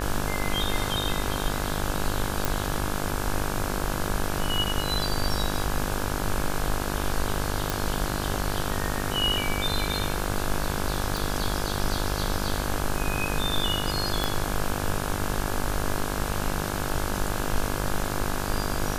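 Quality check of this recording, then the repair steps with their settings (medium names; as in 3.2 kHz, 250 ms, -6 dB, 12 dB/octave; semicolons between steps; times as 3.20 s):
buzz 50 Hz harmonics 34 -31 dBFS
2.45 s: pop
7.70 s: pop
11.17 s: pop
14.24 s: pop -10 dBFS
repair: de-click; de-hum 50 Hz, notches 34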